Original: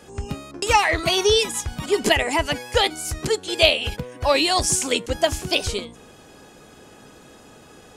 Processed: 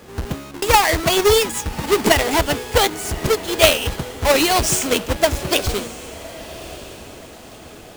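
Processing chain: square wave that keeps the level; echo that smears into a reverb 1143 ms, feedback 41%, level -16 dB; trim -1 dB

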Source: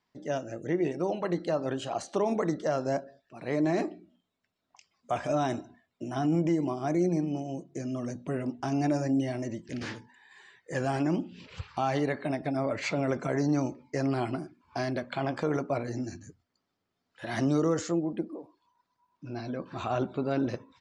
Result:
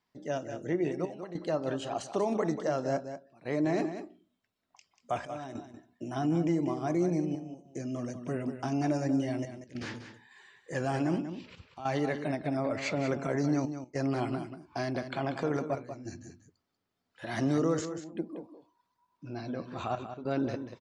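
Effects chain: trance gate "xxxxxxx..xxxxx" 100 bpm -12 dB; on a send: delay 189 ms -10 dB; on the sum: trim -2 dB

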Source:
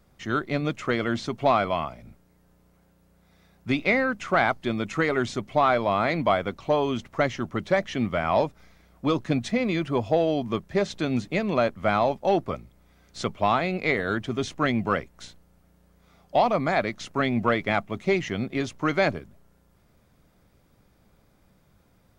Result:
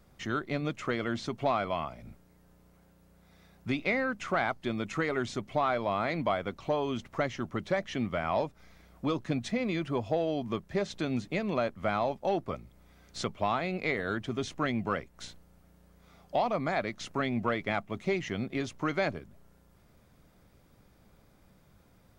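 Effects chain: compression 1.5:1, threshold -38 dBFS, peak gain reduction 8 dB

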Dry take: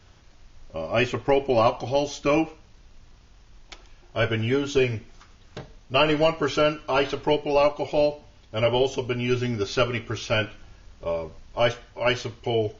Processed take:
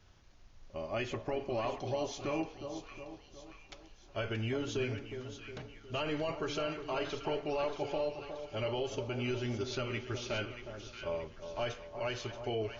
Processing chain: peak limiter -17.5 dBFS, peak gain reduction 9.5 dB; on a send: two-band feedback delay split 1.2 kHz, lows 362 ms, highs 629 ms, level -8.5 dB; on the sum: trim -9 dB

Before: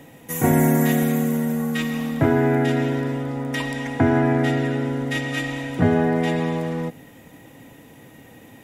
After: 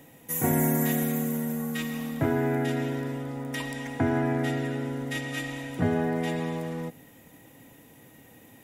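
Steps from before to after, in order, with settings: treble shelf 8.3 kHz +10 dB; trim -7.5 dB

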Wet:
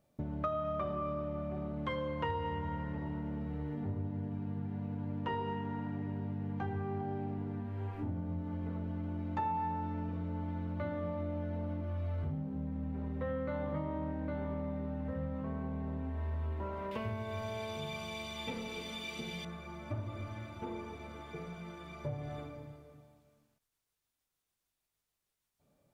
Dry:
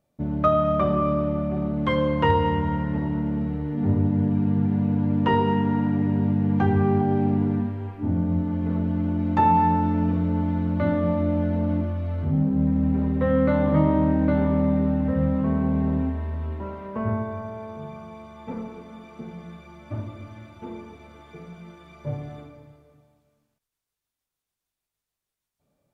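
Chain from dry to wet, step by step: 16.91–19.45 s: resonant high shelf 2 kHz +14 dB, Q 1.5; compression 5:1, threshold -33 dBFS, peak gain reduction 16.5 dB; dynamic bell 220 Hz, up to -6 dB, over -47 dBFS, Q 1.1

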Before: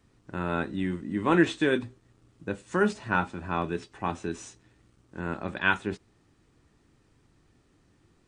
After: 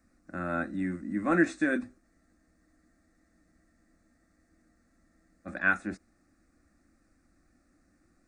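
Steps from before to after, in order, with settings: static phaser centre 630 Hz, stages 8; spectral freeze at 2.05 s, 3.41 s

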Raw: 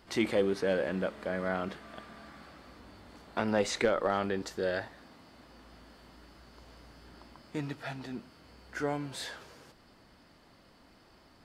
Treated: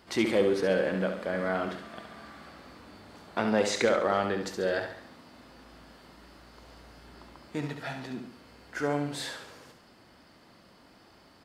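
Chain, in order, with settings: high-pass 88 Hz 6 dB/octave; feedback delay 69 ms, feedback 44%, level -7 dB; trim +2.5 dB

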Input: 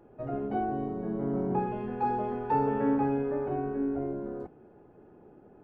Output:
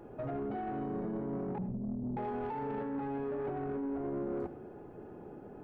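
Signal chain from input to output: 1.58–2.17 s: inverse Chebyshev low-pass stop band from 1.1 kHz, stop band 70 dB; compressor with a negative ratio -33 dBFS, ratio -1; peak limiter -31 dBFS, peak gain reduction 10 dB; saturation -35 dBFS, distortion -16 dB; on a send: reverberation, pre-delay 62 ms, DRR 13.5 dB; on the sum: trim +3.5 dB

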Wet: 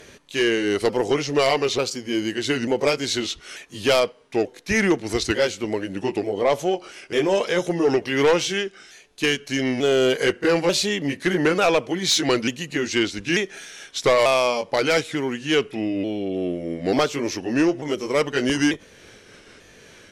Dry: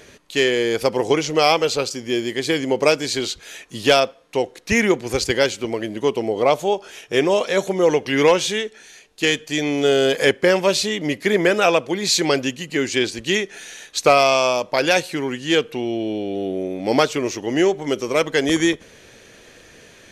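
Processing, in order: sawtooth pitch modulation -2.5 st, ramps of 891 ms; sine folder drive 4 dB, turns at -3.5 dBFS; trim -8 dB

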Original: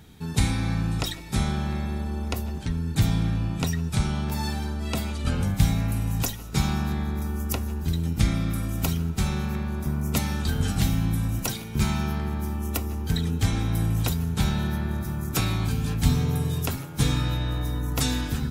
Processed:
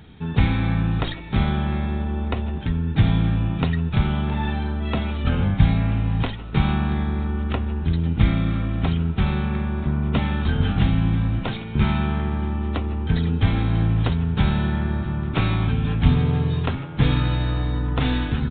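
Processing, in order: tracing distortion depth 0.4 ms; resampled via 8 kHz; trim +4.5 dB

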